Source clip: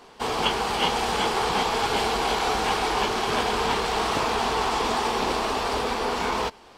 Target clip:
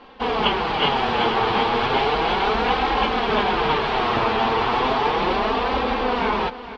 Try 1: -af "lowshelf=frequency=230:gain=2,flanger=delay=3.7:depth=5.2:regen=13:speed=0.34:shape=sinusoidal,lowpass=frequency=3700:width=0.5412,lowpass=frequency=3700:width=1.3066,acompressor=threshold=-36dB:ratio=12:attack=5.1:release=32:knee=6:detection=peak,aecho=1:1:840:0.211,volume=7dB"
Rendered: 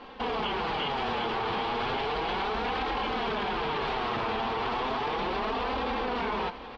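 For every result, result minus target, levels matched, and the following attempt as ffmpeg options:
echo 374 ms late; downward compressor: peak gain reduction +15 dB
-af "lowshelf=frequency=230:gain=2,flanger=delay=3.7:depth=5.2:regen=13:speed=0.34:shape=sinusoidal,lowpass=frequency=3700:width=0.5412,lowpass=frequency=3700:width=1.3066,acompressor=threshold=-36dB:ratio=12:attack=5.1:release=32:knee=6:detection=peak,aecho=1:1:466:0.211,volume=7dB"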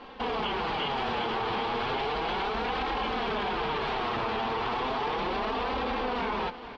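downward compressor: peak gain reduction +15 dB
-af "lowshelf=frequency=230:gain=2,flanger=delay=3.7:depth=5.2:regen=13:speed=0.34:shape=sinusoidal,lowpass=frequency=3700:width=0.5412,lowpass=frequency=3700:width=1.3066,aecho=1:1:466:0.211,volume=7dB"

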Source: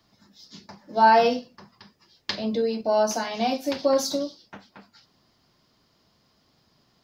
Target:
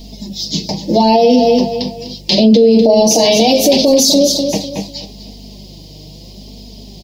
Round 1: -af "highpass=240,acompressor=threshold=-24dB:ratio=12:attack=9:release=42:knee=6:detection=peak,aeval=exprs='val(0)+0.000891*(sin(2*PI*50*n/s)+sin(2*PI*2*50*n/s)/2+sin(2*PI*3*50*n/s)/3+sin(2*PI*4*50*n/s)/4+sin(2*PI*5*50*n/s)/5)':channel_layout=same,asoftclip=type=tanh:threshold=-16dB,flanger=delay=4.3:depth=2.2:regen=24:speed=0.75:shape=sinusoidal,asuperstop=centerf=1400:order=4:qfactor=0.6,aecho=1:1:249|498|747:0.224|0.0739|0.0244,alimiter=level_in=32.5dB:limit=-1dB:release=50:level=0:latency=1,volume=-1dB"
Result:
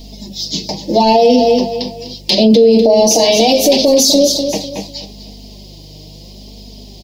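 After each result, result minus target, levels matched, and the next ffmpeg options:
soft clipping: distortion +19 dB; 125 Hz band −3.0 dB
-af "highpass=240,acompressor=threshold=-24dB:ratio=12:attack=9:release=42:knee=6:detection=peak,aeval=exprs='val(0)+0.000891*(sin(2*PI*50*n/s)+sin(2*PI*2*50*n/s)/2+sin(2*PI*3*50*n/s)/3+sin(2*PI*4*50*n/s)/4+sin(2*PI*5*50*n/s)/5)':channel_layout=same,asoftclip=type=tanh:threshold=-5.5dB,flanger=delay=4.3:depth=2.2:regen=24:speed=0.75:shape=sinusoidal,asuperstop=centerf=1400:order=4:qfactor=0.6,aecho=1:1:249|498|747:0.224|0.0739|0.0244,alimiter=level_in=32.5dB:limit=-1dB:release=50:level=0:latency=1,volume=-1dB"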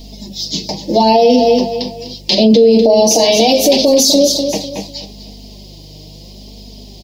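125 Hz band −3.0 dB
-af "highpass=110,acompressor=threshold=-24dB:ratio=12:attack=9:release=42:knee=6:detection=peak,aeval=exprs='val(0)+0.000891*(sin(2*PI*50*n/s)+sin(2*PI*2*50*n/s)/2+sin(2*PI*3*50*n/s)/3+sin(2*PI*4*50*n/s)/4+sin(2*PI*5*50*n/s)/5)':channel_layout=same,asoftclip=type=tanh:threshold=-5.5dB,flanger=delay=4.3:depth=2.2:regen=24:speed=0.75:shape=sinusoidal,asuperstop=centerf=1400:order=4:qfactor=0.6,aecho=1:1:249|498|747:0.224|0.0739|0.0244,alimiter=level_in=32.5dB:limit=-1dB:release=50:level=0:latency=1,volume=-1dB"

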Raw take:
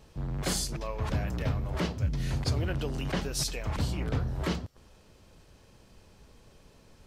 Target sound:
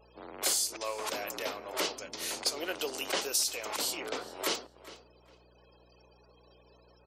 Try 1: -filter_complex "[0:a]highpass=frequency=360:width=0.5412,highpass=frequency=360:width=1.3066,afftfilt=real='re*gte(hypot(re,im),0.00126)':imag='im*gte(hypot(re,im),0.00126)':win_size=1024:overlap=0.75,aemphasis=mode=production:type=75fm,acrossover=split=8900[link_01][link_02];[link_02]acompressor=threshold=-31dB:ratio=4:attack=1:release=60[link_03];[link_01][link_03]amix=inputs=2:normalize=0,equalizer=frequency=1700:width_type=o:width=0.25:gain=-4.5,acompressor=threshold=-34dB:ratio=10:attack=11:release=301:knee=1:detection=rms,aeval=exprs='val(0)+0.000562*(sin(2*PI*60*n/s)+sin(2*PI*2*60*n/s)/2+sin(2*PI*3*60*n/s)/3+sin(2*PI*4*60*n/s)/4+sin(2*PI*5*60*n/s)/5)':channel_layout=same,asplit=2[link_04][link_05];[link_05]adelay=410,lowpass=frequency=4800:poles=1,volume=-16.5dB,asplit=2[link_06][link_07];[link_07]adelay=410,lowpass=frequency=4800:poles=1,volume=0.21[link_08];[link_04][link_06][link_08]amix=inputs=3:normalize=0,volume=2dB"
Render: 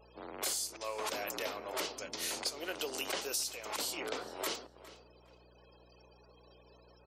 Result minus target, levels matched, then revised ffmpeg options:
downward compressor: peak gain reduction +7 dB
-filter_complex "[0:a]highpass=frequency=360:width=0.5412,highpass=frequency=360:width=1.3066,afftfilt=real='re*gte(hypot(re,im),0.00126)':imag='im*gte(hypot(re,im),0.00126)':win_size=1024:overlap=0.75,aemphasis=mode=production:type=75fm,acrossover=split=8900[link_01][link_02];[link_02]acompressor=threshold=-31dB:ratio=4:attack=1:release=60[link_03];[link_01][link_03]amix=inputs=2:normalize=0,equalizer=frequency=1700:width_type=o:width=0.25:gain=-4.5,acompressor=threshold=-26.5dB:ratio=10:attack=11:release=301:knee=1:detection=rms,aeval=exprs='val(0)+0.000562*(sin(2*PI*60*n/s)+sin(2*PI*2*60*n/s)/2+sin(2*PI*3*60*n/s)/3+sin(2*PI*4*60*n/s)/4+sin(2*PI*5*60*n/s)/5)':channel_layout=same,asplit=2[link_04][link_05];[link_05]adelay=410,lowpass=frequency=4800:poles=1,volume=-16.5dB,asplit=2[link_06][link_07];[link_07]adelay=410,lowpass=frequency=4800:poles=1,volume=0.21[link_08];[link_04][link_06][link_08]amix=inputs=3:normalize=0,volume=2dB"

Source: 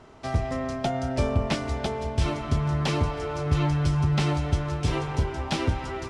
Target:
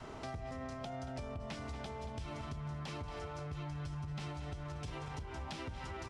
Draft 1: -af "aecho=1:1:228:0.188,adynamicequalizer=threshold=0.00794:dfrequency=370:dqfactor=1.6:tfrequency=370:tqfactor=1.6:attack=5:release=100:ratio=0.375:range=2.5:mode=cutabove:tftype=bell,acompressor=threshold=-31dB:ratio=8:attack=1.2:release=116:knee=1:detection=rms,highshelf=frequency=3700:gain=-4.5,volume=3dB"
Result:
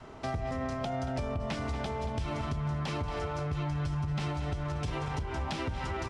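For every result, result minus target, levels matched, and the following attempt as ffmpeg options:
downward compressor: peak gain reduction −9.5 dB; 8,000 Hz band −3.5 dB
-af "aecho=1:1:228:0.188,adynamicequalizer=threshold=0.00794:dfrequency=370:dqfactor=1.6:tfrequency=370:tqfactor=1.6:attack=5:release=100:ratio=0.375:range=2.5:mode=cutabove:tftype=bell,acompressor=threshold=-42dB:ratio=8:attack=1.2:release=116:knee=1:detection=rms,highshelf=frequency=3700:gain=-4.5,volume=3dB"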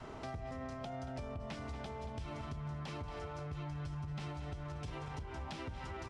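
8,000 Hz band −3.5 dB
-af "aecho=1:1:228:0.188,adynamicequalizer=threshold=0.00794:dfrequency=370:dqfactor=1.6:tfrequency=370:tqfactor=1.6:attack=5:release=100:ratio=0.375:range=2.5:mode=cutabove:tftype=bell,acompressor=threshold=-42dB:ratio=8:attack=1.2:release=116:knee=1:detection=rms,volume=3dB"

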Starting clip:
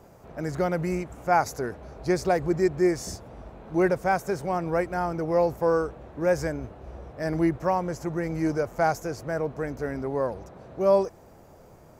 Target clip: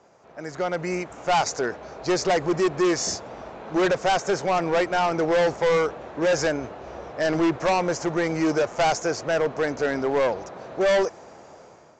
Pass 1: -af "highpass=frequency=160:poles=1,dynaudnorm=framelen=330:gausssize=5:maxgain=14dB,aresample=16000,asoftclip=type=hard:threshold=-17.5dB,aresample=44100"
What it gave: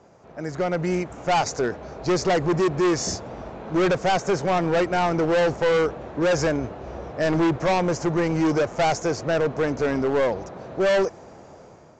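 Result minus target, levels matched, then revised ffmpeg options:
125 Hz band +5.5 dB
-af "highpass=frequency=580:poles=1,dynaudnorm=framelen=330:gausssize=5:maxgain=14dB,aresample=16000,asoftclip=type=hard:threshold=-17.5dB,aresample=44100"

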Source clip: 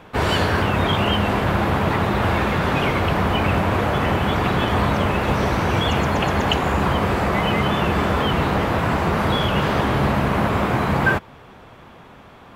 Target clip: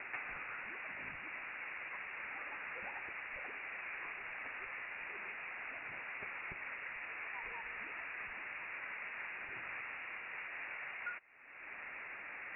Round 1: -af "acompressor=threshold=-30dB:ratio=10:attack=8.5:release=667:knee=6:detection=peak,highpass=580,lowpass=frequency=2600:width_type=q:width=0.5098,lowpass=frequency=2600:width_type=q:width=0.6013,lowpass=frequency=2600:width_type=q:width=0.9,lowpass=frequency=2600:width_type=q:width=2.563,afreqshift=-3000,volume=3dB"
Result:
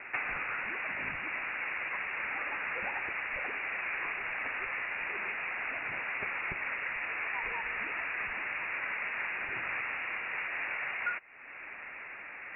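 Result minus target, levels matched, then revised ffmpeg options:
downward compressor: peak gain reduction −9.5 dB
-af "acompressor=threshold=-40.5dB:ratio=10:attack=8.5:release=667:knee=6:detection=peak,highpass=580,lowpass=frequency=2600:width_type=q:width=0.5098,lowpass=frequency=2600:width_type=q:width=0.6013,lowpass=frequency=2600:width_type=q:width=0.9,lowpass=frequency=2600:width_type=q:width=2.563,afreqshift=-3000,volume=3dB"

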